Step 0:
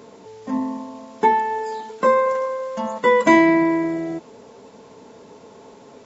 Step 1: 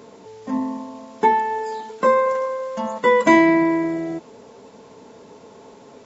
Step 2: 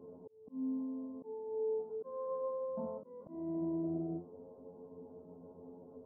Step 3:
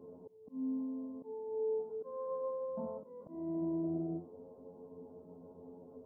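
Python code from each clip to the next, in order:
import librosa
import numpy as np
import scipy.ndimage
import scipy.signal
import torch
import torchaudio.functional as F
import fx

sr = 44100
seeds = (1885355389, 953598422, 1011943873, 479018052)

y1 = x
y2 = fx.stiff_resonator(y1, sr, f0_hz=86.0, decay_s=0.3, stiffness=0.002)
y2 = fx.auto_swell(y2, sr, attack_ms=689.0)
y2 = scipy.ndimage.gaussian_filter1d(y2, 12.0, mode='constant')
y2 = F.gain(torch.from_numpy(y2), 2.5).numpy()
y3 = y2 + 10.0 ** (-20.5 / 20.0) * np.pad(y2, (int(91 * sr / 1000.0), 0))[:len(y2)]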